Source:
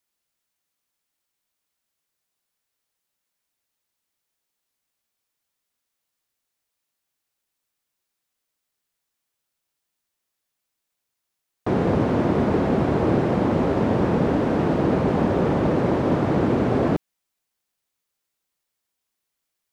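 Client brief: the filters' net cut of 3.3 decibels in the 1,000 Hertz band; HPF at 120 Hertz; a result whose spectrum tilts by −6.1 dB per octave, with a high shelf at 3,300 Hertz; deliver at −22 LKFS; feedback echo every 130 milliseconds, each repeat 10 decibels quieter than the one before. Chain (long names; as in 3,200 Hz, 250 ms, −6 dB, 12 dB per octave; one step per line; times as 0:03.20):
high-pass filter 120 Hz
parametric band 1,000 Hz −5 dB
high-shelf EQ 3,300 Hz +5.5 dB
repeating echo 130 ms, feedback 32%, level −10 dB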